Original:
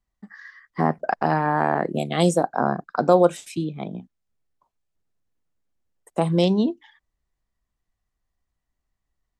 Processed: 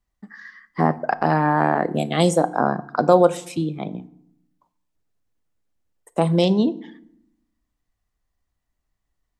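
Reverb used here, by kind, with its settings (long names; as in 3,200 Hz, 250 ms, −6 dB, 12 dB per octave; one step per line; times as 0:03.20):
feedback delay network reverb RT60 0.72 s, low-frequency decay 1.45×, high-frequency decay 0.7×, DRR 14.5 dB
level +2 dB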